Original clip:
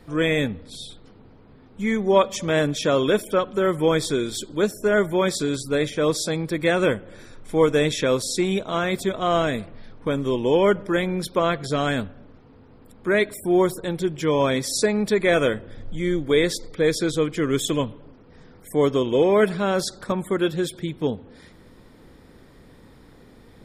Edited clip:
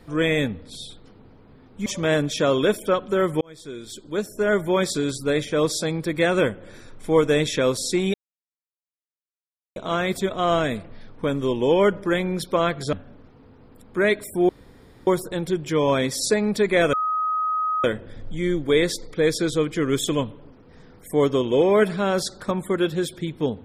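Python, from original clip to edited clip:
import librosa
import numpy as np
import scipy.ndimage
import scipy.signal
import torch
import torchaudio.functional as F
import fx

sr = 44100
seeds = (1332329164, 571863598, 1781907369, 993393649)

y = fx.edit(x, sr, fx.cut(start_s=1.86, length_s=0.45),
    fx.fade_in_span(start_s=3.86, length_s=1.28),
    fx.insert_silence(at_s=8.59, length_s=1.62),
    fx.cut(start_s=11.76, length_s=0.27),
    fx.insert_room_tone(at_s=13.59, length_s=0.58),
    fx.insert_tone(at_s=15.45, length_s=0.91, hz=1260.0, db=-20.5), tone=tone)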